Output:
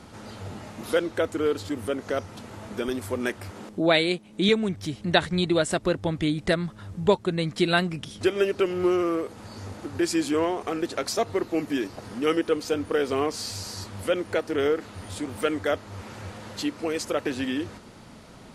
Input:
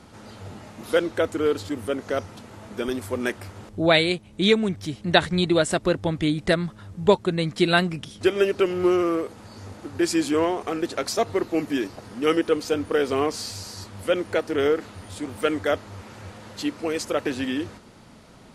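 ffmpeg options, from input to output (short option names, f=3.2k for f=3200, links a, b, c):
-filter_complex "[0:a]asettb=1/sr,asplit=3[a][b][c];[a]atrim=end=3.514[d];[b]atrim=start=3.51:end=4.49,asetpts=PTS-STARTPTS,afade=t=in:d=0.004:c=qsin,afade=t=out:st=0.976:d=0.004:c=qsin,lowshelf=f=140:t=q:w=1.5:g=-12.5[e];[c]atrim=start=4.486[f];[d][e]acrossfade=d=0.004:c1=hsin:c2=qsin[g];[g][f]acrossfade=d=0.004:c1=qsin:c2=hsin,asplit=2[h][i];[i]acompressor=threshold=-33dB:ratio=6,volume=0dB[j];[h][j]amix=inputs=2:normalize=0,volume=-4dB"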